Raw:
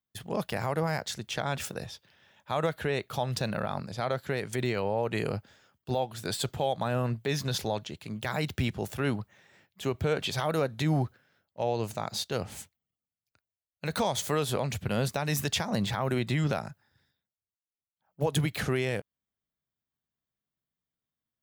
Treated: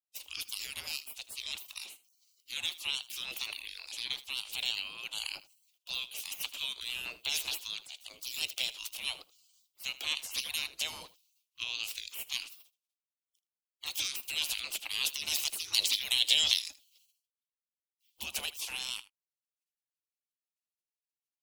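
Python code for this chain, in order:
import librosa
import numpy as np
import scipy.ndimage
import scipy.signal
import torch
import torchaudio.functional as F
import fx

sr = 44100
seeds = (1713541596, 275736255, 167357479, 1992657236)

y = fx.spec_gate(x, sr, threshold_db=-25, keep='weak')
y = fx.high_shelf_res(y, sr, hz=2200.0, db=fx.steps((0.0, 8.0), (15.73, 14.0), (18.22, 6.5)), q=3.0)
y = y + 10.0 ** (-18.0 / 20.0) * np.pad(y, (int(79 * sr / 1000.0), 0))[:len(y)]
y = y * librosa.db_to_amplitude(1.5)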